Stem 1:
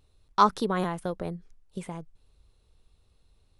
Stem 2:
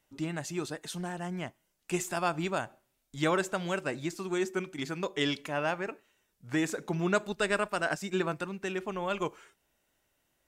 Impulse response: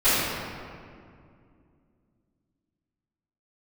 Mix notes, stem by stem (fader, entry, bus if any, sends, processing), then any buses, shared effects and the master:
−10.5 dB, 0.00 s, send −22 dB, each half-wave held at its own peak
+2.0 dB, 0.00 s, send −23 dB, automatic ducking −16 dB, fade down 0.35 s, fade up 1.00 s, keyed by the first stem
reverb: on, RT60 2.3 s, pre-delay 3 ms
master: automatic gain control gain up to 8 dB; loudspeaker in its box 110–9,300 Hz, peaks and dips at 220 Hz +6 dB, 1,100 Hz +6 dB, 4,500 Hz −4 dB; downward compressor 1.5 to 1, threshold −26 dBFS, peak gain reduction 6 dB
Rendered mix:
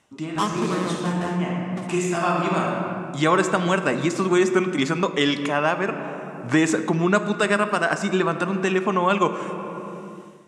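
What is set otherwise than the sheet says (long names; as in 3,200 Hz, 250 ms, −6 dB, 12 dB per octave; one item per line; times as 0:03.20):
stem 2 +2.0 dB → +12.5 dB
reverb return −6.0 dB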